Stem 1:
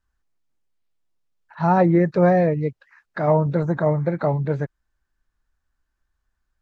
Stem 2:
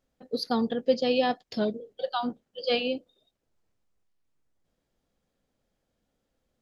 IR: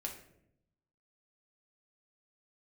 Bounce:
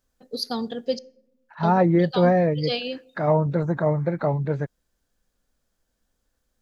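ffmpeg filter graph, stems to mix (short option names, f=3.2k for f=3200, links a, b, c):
-filter_complex "[0:a]volume=-2dB[a];[1:a]bass=f=250:g=0,treble=f=4k:g=11,volume=-3.5dB,asplit=3[b][c][d];[b]atrim=end=0.99,asetpts=PTS-STARTPTS,afade=t=out:st=0.986:d=0.004:c=hsin[e];[c]atrim=start=0.99:end=1.63,asetpts=PTS-STARTPTS,volume=0[f];[d]atrim=start=1.63,asetpts=PTS-STARTPTS,afade=t=in:d=0.004:c=hsin[g];[e][f][g]concat=n=3:v=0:a=1,asplit=2[h][i];[i]volume=-13.5dB[j];[2:a]atrim=start_sample=2205[k];[j][k]afir=irnorm=-1:irlink=0[l];[a][h][l]amix=inputs=3:normalize=0"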